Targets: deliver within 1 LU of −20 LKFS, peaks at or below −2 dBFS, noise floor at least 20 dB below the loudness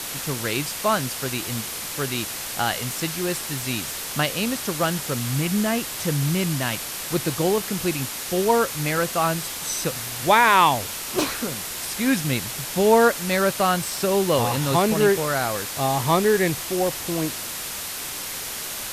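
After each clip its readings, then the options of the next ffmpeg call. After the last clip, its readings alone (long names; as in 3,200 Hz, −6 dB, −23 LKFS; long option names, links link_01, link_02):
background noise floor −32 dBFS; target noise floor −43 dBFS; integrated loudness −23.0 LKFS; sample peak −4.0 dBFS; target loudness −20.0 LKFS
→ -af "afftdn=noise_reduction=11:noise_floor=-32"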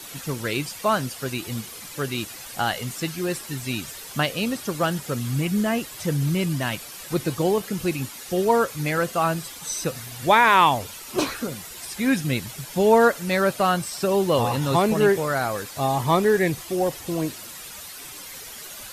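background noise floor −39 dBFS; target noise floor −44 dBFS
→ -af "afftdn=noise_reduction=6:noise_floor=-39"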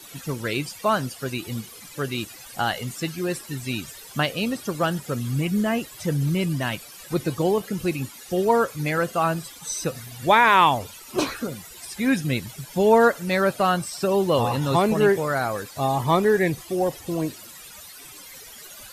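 background noise floor −44 dBFS; integrated loudness −23.5 LKFS; sample peak −4.5 dBFS; target loudness −20.0 LKFS
→ -af "volume=3.5dB,alimiter=limit=-2dB:level=0:latency=1"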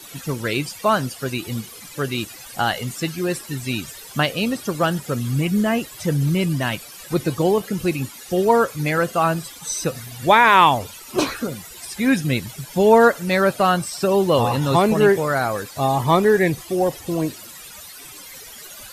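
integrated loudness −20.0 LKFS; sample peak −2.0 dBFS; background noise floor −40 dBFS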